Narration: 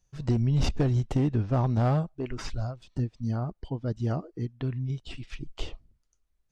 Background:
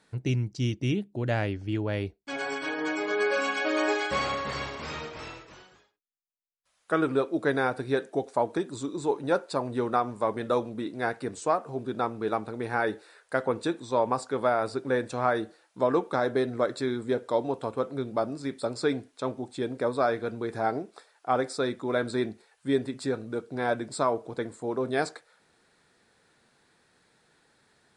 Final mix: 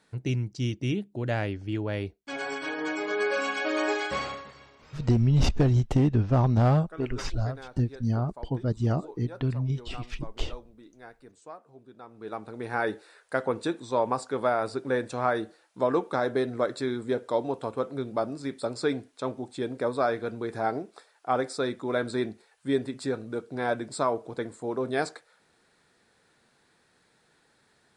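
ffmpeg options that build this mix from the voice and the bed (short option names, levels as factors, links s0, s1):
-filter_complex "[0:a]adelay=4800,volume=1.41[s0];[1:a]volume=7.08,afade=t=out:st=4.08:d=0.45:silence=0.133352,afade=t=in:st=12.06:d=0.78:silence=0.125893[s1];[s0][s1]amix=inputs=2:normalize=0"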